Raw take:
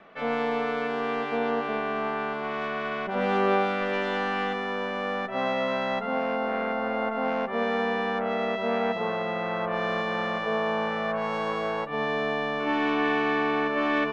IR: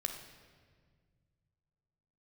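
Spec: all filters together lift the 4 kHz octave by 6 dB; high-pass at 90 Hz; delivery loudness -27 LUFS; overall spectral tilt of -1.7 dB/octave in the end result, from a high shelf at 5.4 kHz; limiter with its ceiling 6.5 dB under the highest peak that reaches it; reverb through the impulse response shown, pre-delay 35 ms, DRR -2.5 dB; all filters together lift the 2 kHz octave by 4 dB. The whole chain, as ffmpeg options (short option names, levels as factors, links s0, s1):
-filter_complex "[0:a]highpass=90,equalizer=f=2000:t=o:g=3.5,equalizer=f=4000:t=o:g=8,highshelf=f=5400:g=-3.5,alimiter=limit=0.141:level=0:latency=1,asplit=2[s0][s1];[1:a]atrim=start_sample=2205,adelay=35[s2];[s1][s2]afir=irnorm=-1:irlink=0,volume=1.19[s3];[s0][s3]amix=inputs=2:normalize=0,volume=0.596"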